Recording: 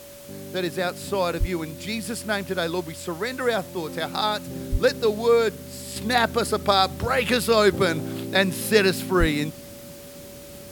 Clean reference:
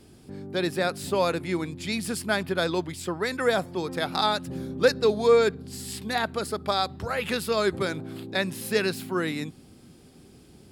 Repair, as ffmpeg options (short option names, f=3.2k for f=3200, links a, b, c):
-filter_complex "[0:a]bandreject=f=570:w=30,asplit=3[a][b][c];[a]afade=t=out:st=1.39:d=0.02[d];[b]highpass=f=140:w=0.5412,highpass=f=140:w=1.3066,afade=t=in:st=1.39:d=0.02,afade=t=out:st=1.51:d=0.02[e];[c]afade=t=in:st=1.51:d=0.02[f];[d][e][f]amix=inputs=3:normalize=0,asplit=3[g][h][i];[g]afade=t=out:st=4.71:d=0.02[j];[h]highpass=f=140:w=0.5412,highpass=f=140:w=1.3066,afade=t=in:st=4.71:d=0.02,afade=t=out:st=4.83:d=0.02[k];[i]afade=t=in:st=4.83:d=0.02[l];[j][k][l]amix=inputs=3:normalize=0,asplit=3[m][n][o];[m]afade=t=out:st=9.19:d=0.02[p];[n]highpass=f=140:w=0.5412,highpass=f=140:w=1.3066,afade=t=in:st=9.19:d=0.02,afade=t=out:st=9.31:d=0.02[q];[o]afade=t=in:st=9.31:d=0.02[r];[p][q][r]amix=inputs=3:normalize=0,afwtdn=0.005,asetnsamples=n=441:p=0,asendcmd='5.96 volume volume -6.5dB',volume=0dB"